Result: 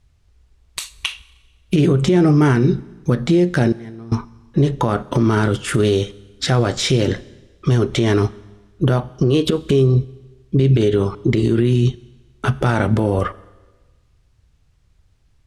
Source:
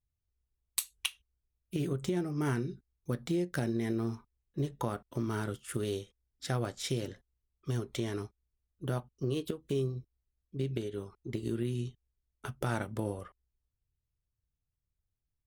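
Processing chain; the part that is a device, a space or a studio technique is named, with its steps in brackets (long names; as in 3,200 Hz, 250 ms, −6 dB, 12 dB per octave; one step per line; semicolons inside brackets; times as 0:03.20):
loud club master (downward compressor 2 to 1, threshold −35 dBFS, peak gain reduction 5.5 dB; hard clipping −22.5 dBFS, distortion −33 dB; boost into a limiter +33.5 dB)
0:03.72–0:04.12: noise gate −2 dBFS, range −20 dB
high-frequency loss of the air 75 metres
four-comb reverb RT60 1.3 s, combs from 30 ms, DRR 19.5 dB
level −5.5 dB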